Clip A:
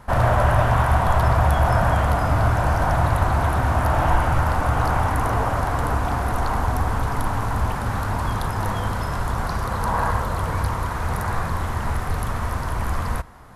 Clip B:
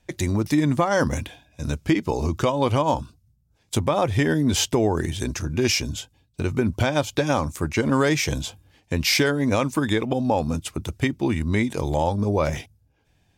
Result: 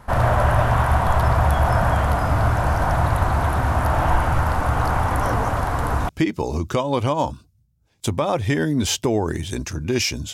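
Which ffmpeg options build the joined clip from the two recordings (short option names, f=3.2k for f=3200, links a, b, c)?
-filter_complex "[1:a]asplit=2[a][b];[0:a]apad=whole_dur=10.33,atrim=end=10.33,atrim=end=6.092[c];[b]atrim=start=1.778:end=6.02[d];[a]atrim=start=0.8:end=1.78,asetpts=PTS-STARTPTS,volume=-10dB,afade=t=in:d=0.004:c=hsin,afade=t=out:st=0.976:d=0.004:c=hsin,adelay=5110[e];[c][d]acrossfade=d=0.004:c1=hsin:c2=hsin[f];[f][e]amix=inputs=2:normalize=0"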